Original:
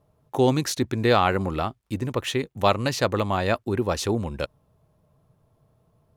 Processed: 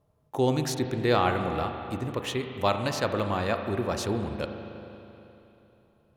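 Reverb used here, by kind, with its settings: spring tank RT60 3.1 s, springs 33/39 ms, chirp 50 ms, DRR 5.5 dB; trim -5 dB

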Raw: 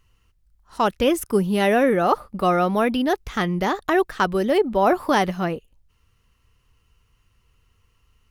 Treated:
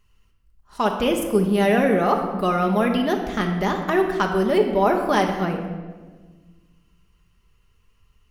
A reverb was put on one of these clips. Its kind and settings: simulated room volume 1300 m³, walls mixed, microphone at 1.3 m; trim -2.5 dB

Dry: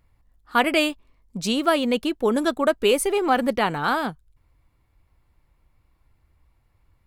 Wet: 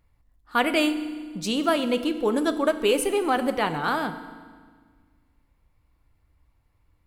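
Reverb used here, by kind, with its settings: FDN reverb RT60 1.6 s, low-frequency decay 1.3×, high-frequency decay 0.9×, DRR 9.5 dB; trim -3 dB

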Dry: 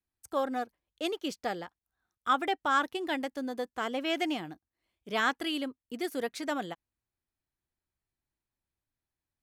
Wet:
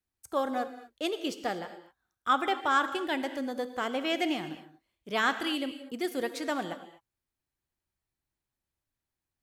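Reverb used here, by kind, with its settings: gated-style reverb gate 270 ms flat, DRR 10 dB; trim +1 dB

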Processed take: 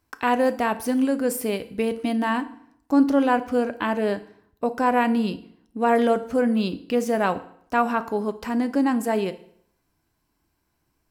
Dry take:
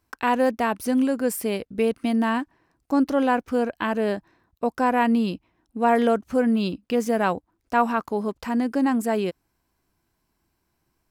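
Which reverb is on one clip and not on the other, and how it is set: FDN reverb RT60 0.64 s, low-frequency decay 1.05×, high-frequency decay 0.9×, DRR 10.5 dB

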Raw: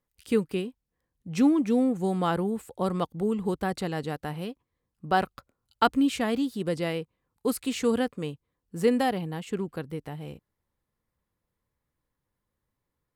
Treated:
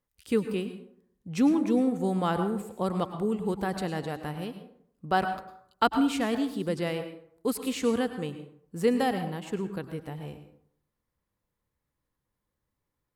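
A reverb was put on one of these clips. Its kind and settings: plate-style reverb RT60 0.64 s, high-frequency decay 0.55×, pre-delay 90 ms, DRR 8.5 dB; trim -1.5 dB

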